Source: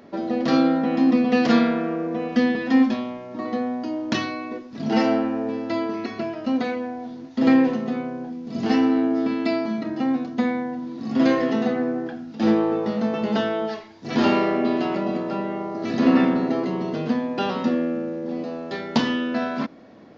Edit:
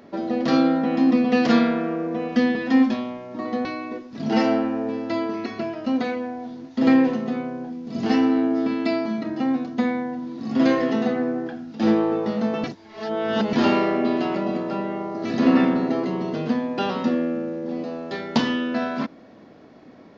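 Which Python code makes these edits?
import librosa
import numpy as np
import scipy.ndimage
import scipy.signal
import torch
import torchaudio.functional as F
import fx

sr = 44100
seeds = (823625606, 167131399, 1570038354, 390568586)

y = fx.edit(x, sr, fx.cut(start_s=3.65, length_s=0.6),
    fx.reverse_span(start_s=13.24, length_s=0.89), tone=tone)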